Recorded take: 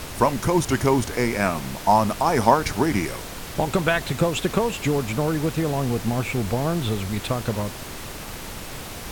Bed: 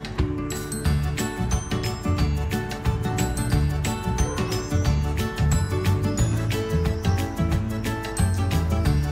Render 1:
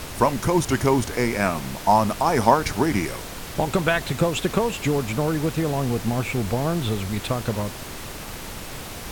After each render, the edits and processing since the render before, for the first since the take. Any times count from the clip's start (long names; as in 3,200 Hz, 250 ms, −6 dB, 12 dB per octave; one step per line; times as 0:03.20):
no processing that can be heard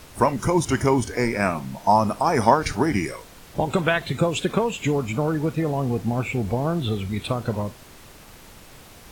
noise reduction from a noise print 11 dB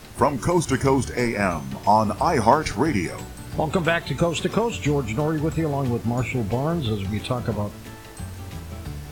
mix in bed −13 dB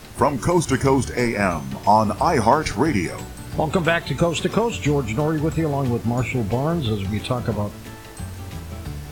level +2 dB
brickwall limiter −3 dBFS, peak gain reduction 2.5 dB